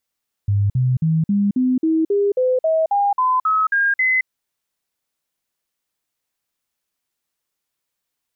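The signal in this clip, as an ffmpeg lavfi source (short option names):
-f lavfi -i "aevalsrc='0.2*clip(min(mod(t,0.27),0.22-mod(t,0.27))/0.005,0,1)*sin(2*PI*101*pow(2,floor(t/0.27)/3)*mod(t,0.27))':d=3.78:s=44100"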